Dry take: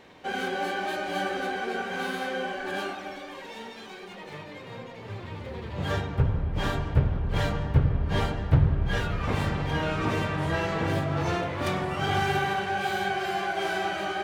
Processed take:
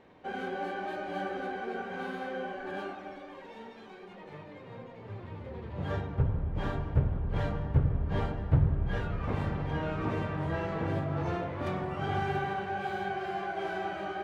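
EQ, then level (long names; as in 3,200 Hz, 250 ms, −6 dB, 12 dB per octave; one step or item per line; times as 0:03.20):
high-shelf EQ 2,100 Hz −10.5 dB
high-shelf EQ 5,800 Hz −7 dB
−4.0 dB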